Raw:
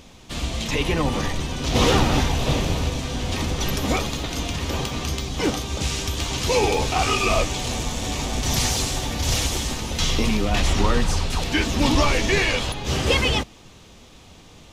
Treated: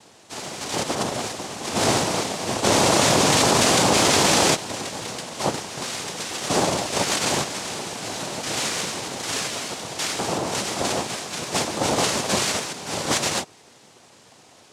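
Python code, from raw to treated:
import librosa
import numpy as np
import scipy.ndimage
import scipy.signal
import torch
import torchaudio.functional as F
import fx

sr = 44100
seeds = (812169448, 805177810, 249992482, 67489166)

y = scipy.signal.sosfilt(scipy.signal.butter(2, 180.0, 'highpass', fs=sr, output='sos'), x)
y = fx.noise_vocoder(y, sr, seeds[0], bands=2)
y = fx.env_flatten(y, sr, amount_pct=100, at=(2.63, 4.54), fade=0.02)
y = F.gain(torch.from_numpy(y), -1.5).numpy()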